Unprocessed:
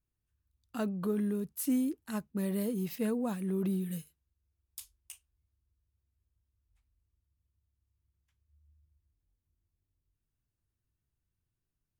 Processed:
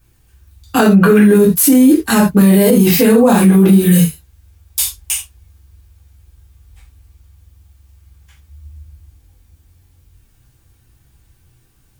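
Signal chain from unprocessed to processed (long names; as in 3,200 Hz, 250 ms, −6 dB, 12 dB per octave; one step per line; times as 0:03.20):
gain on a spectral selection 0:00.86–0:01.19, 1,300–2,900 Hz +12 dB
convolution reverb, pre-delay 3 ms, DRR −6 dB
boost into a limiter +26 dB
level −1 dB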